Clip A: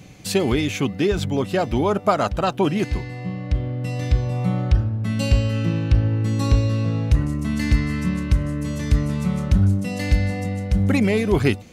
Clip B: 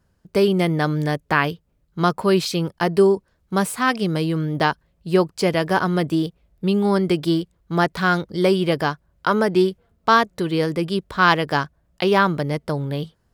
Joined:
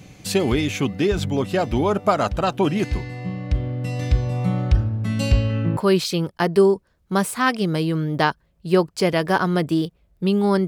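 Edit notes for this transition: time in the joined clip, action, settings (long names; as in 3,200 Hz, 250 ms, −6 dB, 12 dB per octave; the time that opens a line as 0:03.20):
clip A
0:05.31–0:05.77: low-pass filter 6,400 Hz → 1,200 Hz
0:05.77: continue with clip B from 0:02.18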